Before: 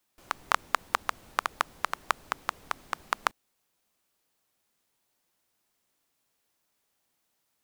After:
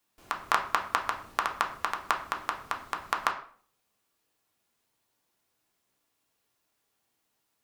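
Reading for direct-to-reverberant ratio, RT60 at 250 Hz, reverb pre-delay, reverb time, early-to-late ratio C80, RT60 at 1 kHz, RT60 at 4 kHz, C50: 1.5 dB, 0.60 s, 3 ms, 0.50 s, 14.0 dB, 0.45 s, 0.40 s, 10.0 dB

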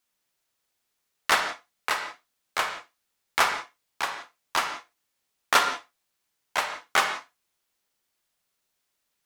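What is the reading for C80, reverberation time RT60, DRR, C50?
9.5 dB, not exponential, 6.0 dB, 7.5 dB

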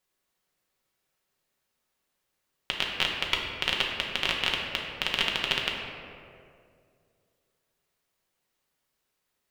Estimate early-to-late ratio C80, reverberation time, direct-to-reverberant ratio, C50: 3.5 dB, 2.3 s, -2.0 dB, 2.0 dB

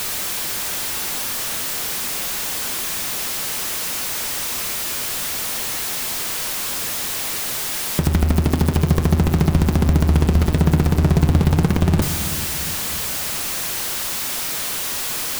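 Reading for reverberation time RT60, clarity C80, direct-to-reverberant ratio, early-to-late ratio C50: 2.4 s, 10.0 dB, 8.0 dB, 9.5 dB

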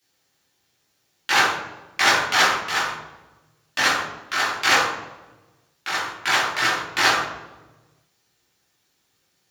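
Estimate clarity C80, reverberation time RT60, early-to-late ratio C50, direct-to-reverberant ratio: 7.0 dB, 1.1 s, 3.5 dB, -7.0 dB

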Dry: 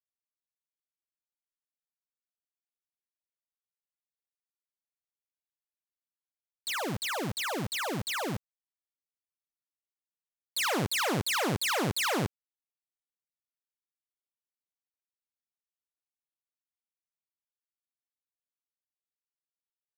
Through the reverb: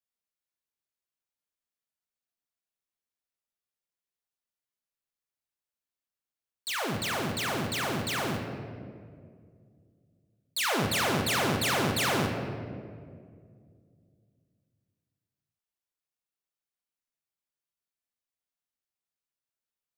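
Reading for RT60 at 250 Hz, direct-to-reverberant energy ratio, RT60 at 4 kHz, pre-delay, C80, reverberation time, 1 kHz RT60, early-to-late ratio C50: 2.9 s, 2.0 dB, 1.1 s, 4 ms, 5.5 dB, 2.1 s, 1.8 s, 4.5 dB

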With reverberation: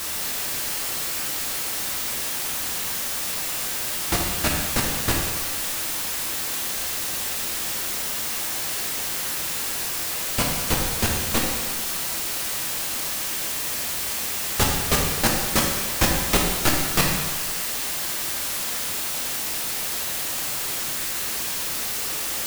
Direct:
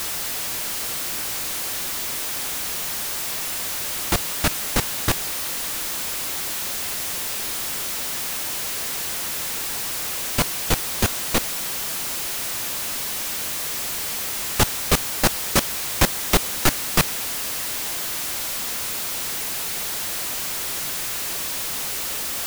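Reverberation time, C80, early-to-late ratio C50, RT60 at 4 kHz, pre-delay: 1.4 s, 4.0 dB, 2.0 dB, 1.3 s, 5 ms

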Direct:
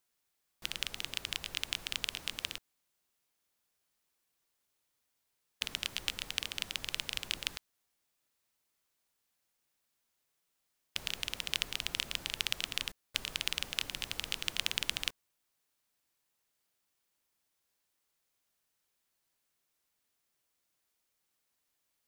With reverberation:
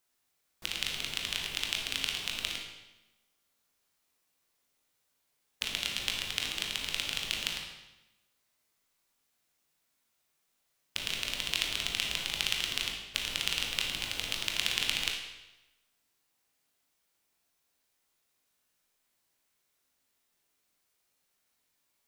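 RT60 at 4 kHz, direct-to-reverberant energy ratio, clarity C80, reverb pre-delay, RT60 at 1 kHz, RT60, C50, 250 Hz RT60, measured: 0.90 s, 0.0 dB, 6.0 dB, 19 ms, 1.0 s, 1.0 s, 3.5 dB, 1.1 s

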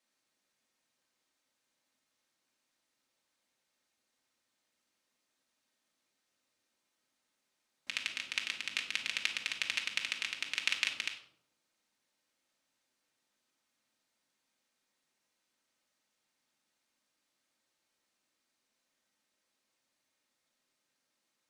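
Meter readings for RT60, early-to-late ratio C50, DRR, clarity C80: 0.70 s, 8.5 dB, 0.0 dB, 12.0 dB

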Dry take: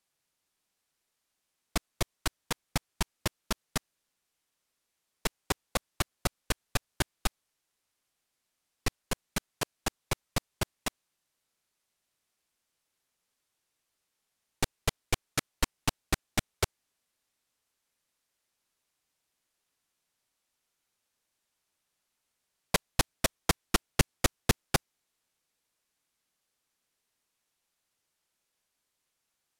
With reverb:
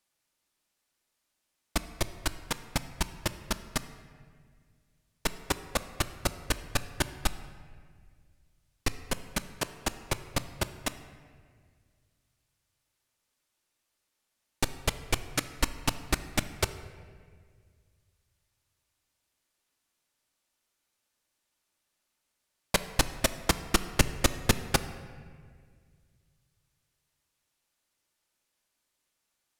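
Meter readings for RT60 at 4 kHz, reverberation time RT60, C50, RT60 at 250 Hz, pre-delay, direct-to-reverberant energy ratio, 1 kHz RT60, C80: 1.2 s, 1.9 s, 12.5 dB, 2.3 s, 3 ms, 9.5 dB, 1.7 s, 14.0 dB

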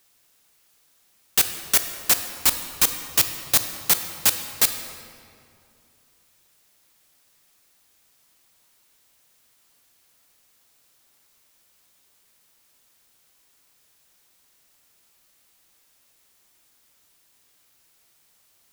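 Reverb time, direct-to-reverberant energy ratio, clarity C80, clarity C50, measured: 2.5 s, 7.5 dB, 9.5 dB, 8.5 dB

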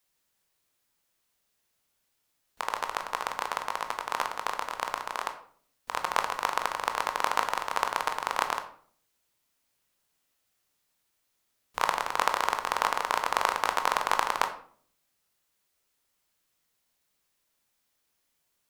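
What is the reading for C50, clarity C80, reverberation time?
10.5 dB, 13.5 dB, 0.50 s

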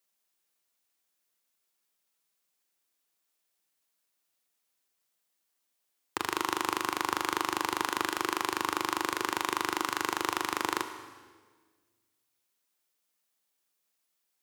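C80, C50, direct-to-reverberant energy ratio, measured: 11.0 dB, 10.0 dB, 9.0 dB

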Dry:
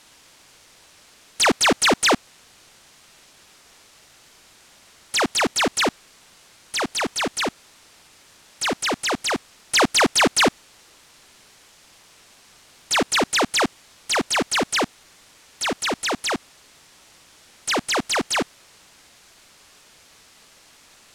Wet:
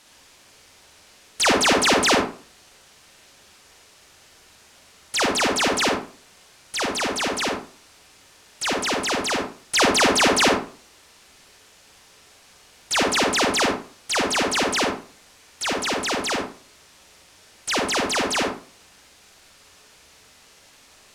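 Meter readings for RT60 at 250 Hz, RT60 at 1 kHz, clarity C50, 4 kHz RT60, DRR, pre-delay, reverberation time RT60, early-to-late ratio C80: 0.45 s, 0.40 s, 2.5 dB, 0.30 s, 0.0 dB, 40 ms, 0.40 s, 8.5 dB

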